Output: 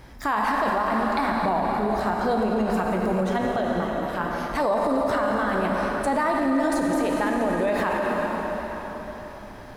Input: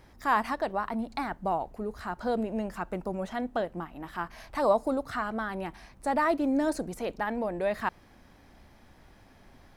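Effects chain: 3.41–4.49 AM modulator 130 Hz, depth 35%; plate-style reverb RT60 4.6 s, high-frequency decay 0.85×, DRR -0.5 dB; limiter -23.5 dBFS, peak gain reduction 11.5 dB; gain +8.5 dB

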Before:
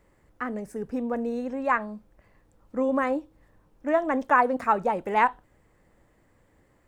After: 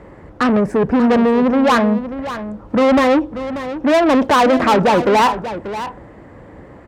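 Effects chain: tilt -4.5 dB/oct; overdrive pedal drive 30 dB, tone 1500 Hz, clips at -7.5 dBFS; HPF 48 Hz; high shelf 2600 Hz +8 dB; echo 0.587 s -12 dB; gain +1.5 dB

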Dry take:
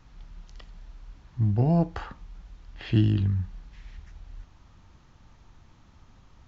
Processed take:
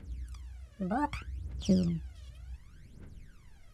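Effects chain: phaser 0.38 Hz, delay 3.1 ms, feedback 79%; speed mistake 45 rpm record played at 78 rpm; gain -8 dB

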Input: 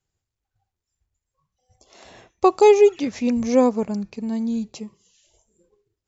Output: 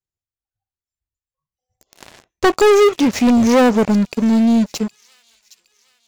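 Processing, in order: sample leveller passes 5; thin delay 0.765 s, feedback 47%, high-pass 3600 Hz, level -17 dB; gain -4.5 dB

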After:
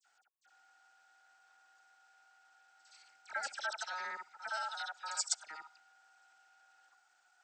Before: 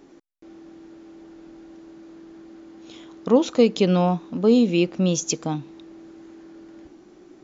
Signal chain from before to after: local time reversal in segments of 58 ms; ring modulator 1100 Hz; differentiator; dispersion lows, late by 56 ms, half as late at 2400 Hz; gain -4 dB

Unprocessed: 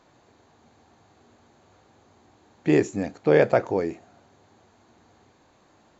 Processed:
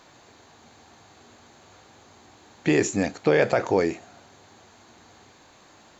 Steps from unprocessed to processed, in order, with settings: tilt shelf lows -4.5 dB, about 1300 Hz; limiter -16.5 dBFS, peak gain reduction 9.5 dB; gain +7.5 dB

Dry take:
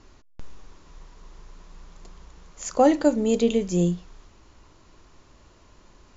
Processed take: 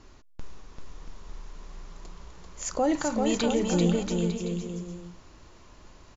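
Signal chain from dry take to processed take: 2.95–3.46 graphic EQ 125/250/500/1000/2000/4000 Hz +9/-6/-9/+9/+3/+4 dB; limiter -17 dBFS, peak gain reduction 10 dB; bouncing-ball echo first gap 0.39 s, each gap 0.75×, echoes 5

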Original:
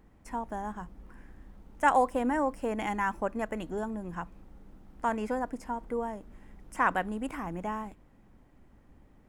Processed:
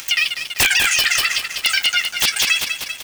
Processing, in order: tilt shelf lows -5.5 dB; in parallel at 0 dB: compressor 6:1, threshold -40 dBFS, peak gain reduction 20.5 dB; on the sum: HPF 580 Hz 24 dB/oct; shoebox room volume 250 m³, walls furnished, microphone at 1.6 m; wrapped overs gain 15 dB; notch 3600 Hz, Q 14; wide varispeed 3.06×; on a send: feedback echo 0.195 s, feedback 53%, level -9.5 dB; on the sum: upward compressor, threshold -35 dBFS; crossover distortion -49 dBFS; maximiser +23 dB; gain -5 dB

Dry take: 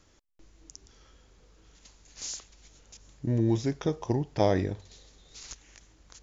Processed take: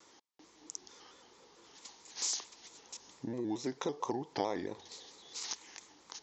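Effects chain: compressor 5:1, threshold -34 dBFS, peak gain reduction 14 dB; speaker cabinet 350–6800 Hz, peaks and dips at 610 Hz -8 dB, 910 Hz +6 dB, 1500 Hz -6 dB, 2600 Hz -5 dB; shaped vibrato square 4.5 Hz, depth 100 cents; gain +6 dB

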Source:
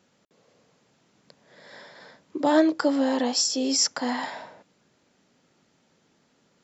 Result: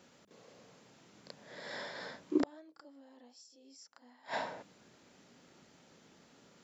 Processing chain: notches 50/100/150/200 Hz; flipped gate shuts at -21 dBFS, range -38 dB; reverse echo 33 ms -9.5 dB; gain +3 dB

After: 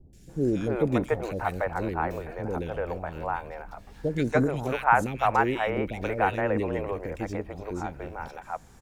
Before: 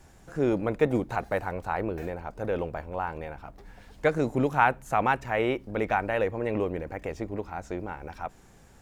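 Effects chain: three bands offset in time lows, highs, mids 0.13/0.29 s, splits 450/2300 Hz; gain +2.5 dB

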